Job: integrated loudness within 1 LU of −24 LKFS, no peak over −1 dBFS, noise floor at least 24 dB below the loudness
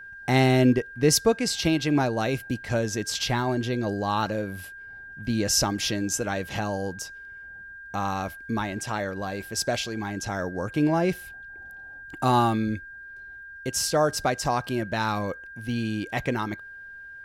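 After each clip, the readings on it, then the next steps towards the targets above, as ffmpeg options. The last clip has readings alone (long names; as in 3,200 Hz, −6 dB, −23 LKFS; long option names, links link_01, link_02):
interfering tone 1,600 Hz; level of the tone −40 dBFS; integrated loudness −26.0 LKFS; sample peak −8.5 dBFS; target loudness −24.0 LKFS
→ -af "bandreject=frequency=1600:width=30"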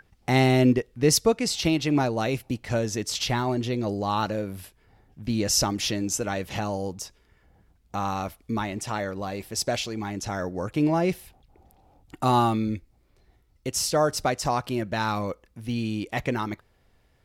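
interfering tone none found; integrated loudness −26.0 LKFS; sample peak −9.0 dBFS; target loudness −24.0 LKFS
→ -af "volume=2dB"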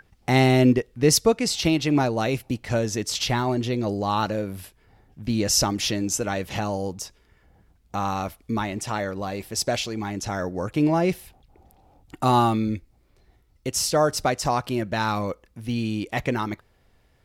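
integrated loudness −24.0 LKFS; sample peak −7.0 dBFS; background noise floor −62 dBFS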